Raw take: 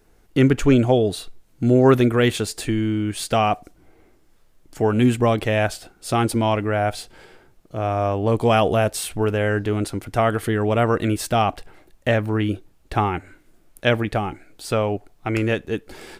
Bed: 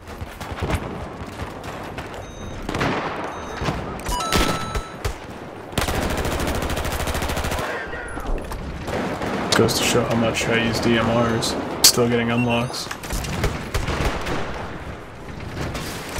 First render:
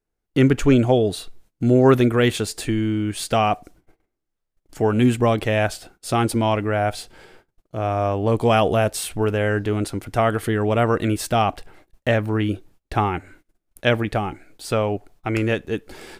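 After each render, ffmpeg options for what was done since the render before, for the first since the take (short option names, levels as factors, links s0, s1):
-af "agate=range=0.0631:threshold=0.00398:ratio=16:detection=peak"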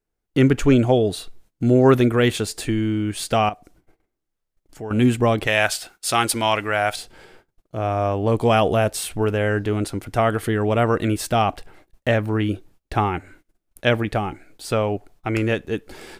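-filter_complex "[0:a]asettb=1/sr,asplit=3[s0][s1][s2];[s0]atrim=end=3.494[s3];[s1]atrim=start=3.49:end=4.91,asetpts=PTS-STARTPTS,afade=t=in:d=0.004:c=qsin,afade=t=out:st=1.416:d=0.004:c=qsin,acompressor=threshold=0.00316:ratio=1.5:attack=3.2:release=140:knee=1:detection=peak[s4];[s2]atrim=start=4.906[s5];[s3][s4]acrossfade=d=0.004:c1=hsin:c2=qsin[s6];[s6][s5]acrossfade=d=0.004:c1=qsin:c2=hsin,asettb=1/sr,asplit=3[s7][s8][s9];[s7]atrim=end=5.474[s10];[s8]atrim=start=5.47:end=6.96,asetpts=PTS-STARTPTS,afade=t=in:d=0.004:c=qsin,afade=t=out:st=1.486:d=0.004:c=qsin,tiltshelf=f=680:g=-8.5[s11];[s9]atrim=start=6.956[s12];[s10][s11]acrossfade=d=0.004:c1=hsin:c2=qsin[s13];[s13][s12]acrossfade=d=0.004:c1=qsin:c2=hsin"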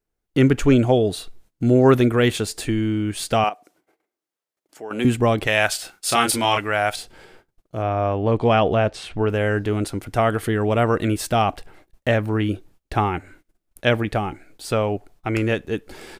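-filter_complex "[0:a]asettb=1/sr,asplit=3[s0][s1][s2];[s0]atrim=end=3.444[s3];[s1]atrim=start=3.44:end=5.05,asetpts=PTS-STARTPTS,afade=t=in:d=0.004:c=qsin,afade=t=out:st=1.606:d=0.004:c=qsin,highpass=360[s4];[s2]atrim=start=5.046[s5];[s3][s4]acrossfade=d=0.004:c1=hsin:c2=qsin[s6];[s6][s5]acrossfade=d=0.004:c1=qsin:c2=hsin,asplit=3[s7][s8][s9];[s7]afade=t=out:st=5.78:d=0.02[s10];[s8]asplit=2[s11][s12];[s12]adelay=30,volume=0.631[s13];[s11][s13]amix=inputs=2:normalize=0,afade=t=in:st=5.78:d=0.02,afade=t=out:st=6.58:d=0.02[s14];[s9]afade=t=in:st=6.58:d=0.02[s15];[s10][s14][s15]amix=inputs=3:normalize=0,asettb=1/sr,asplit=3[s16][s17][s18];[s16]atrim=end=7.824[s19];[s17]atrim=start=7.82:end=9.3,asetpts=PTS-STARTPTS,afade=t=in:d=0.004:c=qsin,afade=t=out:st=1.476:d=0.004:c=qsin,lowpass=3900[s20];[s18]atrim=start=9.296[s21];[s19][s20]acrossfade=d=0.004:c1=hsin:c2=qsin[s22];[s22][s21]acrossfade=d=0.004:c1=qsin:c2=hsin"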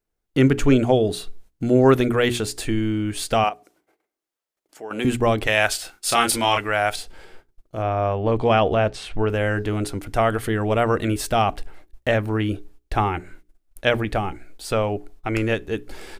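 -af "bandreject=f=60:t=h:w=6,bandreject=f=120:t=h:w=6,bandreject=f=180:t=h:w=6,bandreject=f=240:t=h:w=6,bandreject=f=300:t=h:w=6,bandreject=f=360:t=h:w=6,bandreject=f=420:t=h:w=6,asubboost=boost=3:cutoff=63"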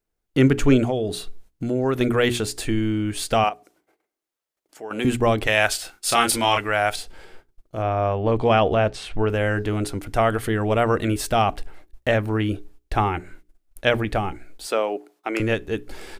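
-filter_complex "[0:a]asettb=1/sr,asplit=3[s0][s1][s2];[s0]atrim=end=0.884[s3];[s1]atrim=start=0.88:end=2.01,asetpts=PTS-STARTPTS,afade=t=in:d=0.004:c=qsin,afade=t=out:st=1.126:d=0.004:c=qsin,acompressor=threshold=0.0631:ratio=2:attack=3.2:release=140:knee=1:detection=peak[s4];[s2]atrim=start=2.006[s5];[s3][s4]acrossfade=d=0.004:c1=hsin:c2=qsin[s6];[s6][s5]acrossfade=d=0.004:c1=qsin:c2=hsin,asettb=1/sr,asplit=3[s7][s8][s9];[s7]atrim=end=14.664[s10];[s8]atrim=start=14.66:end=15.4,asetpts=PTS-STARTPTS,afade=t=in:d=0.004:c=qsin,afade=t=out:st=0.736:d=0.004:c=qsin,highpass=f=280:w=0.5412,highpass=f=280:w=1.3066[s11];[s9]atrim=start=15.396[s12];[s10][s11]acrossfade=d=0.004:c1=hsin:c2=qsin[s13];[s13][s12]acrossfade=d=0.004:c1=qsin:c2=hsin"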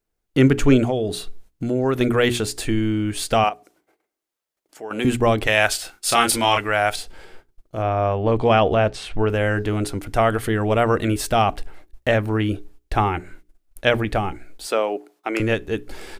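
-af "volume=1.19"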